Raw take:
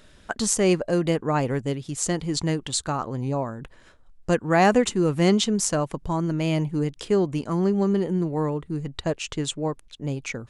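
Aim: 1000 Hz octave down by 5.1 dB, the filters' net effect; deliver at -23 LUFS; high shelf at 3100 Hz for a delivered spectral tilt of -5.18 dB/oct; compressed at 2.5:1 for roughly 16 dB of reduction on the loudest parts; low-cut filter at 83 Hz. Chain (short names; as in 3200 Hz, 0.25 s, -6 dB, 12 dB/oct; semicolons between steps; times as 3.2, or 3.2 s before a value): HPF 83 Hz; bell 1000 Hz -7 dB; high shelf 3100 Hz -3.5 dB; compressor 2.5:1, threshold -41 dBFS; gain +15.5 dB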